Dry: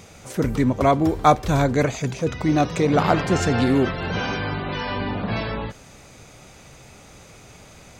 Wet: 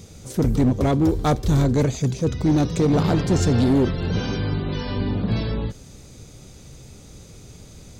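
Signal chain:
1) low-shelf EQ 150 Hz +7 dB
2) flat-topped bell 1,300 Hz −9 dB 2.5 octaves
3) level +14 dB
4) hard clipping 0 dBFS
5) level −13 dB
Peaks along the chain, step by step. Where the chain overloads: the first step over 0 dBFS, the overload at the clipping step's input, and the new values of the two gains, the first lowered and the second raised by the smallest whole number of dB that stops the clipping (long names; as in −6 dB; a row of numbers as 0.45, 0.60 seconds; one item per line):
−2.5, −6.5, +7.5, 0.0, −13.0 dBFS
step 3, 7.5 dB
step 3 +6 dB, step 5 −5 dB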